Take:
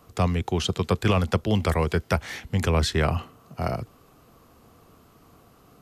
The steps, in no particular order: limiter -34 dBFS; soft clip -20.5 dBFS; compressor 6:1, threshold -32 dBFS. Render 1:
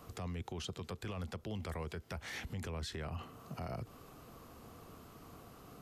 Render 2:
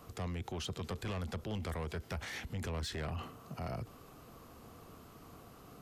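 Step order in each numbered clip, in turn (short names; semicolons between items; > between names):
compressor > soft clip > limiter; soft clip > limiter > compressor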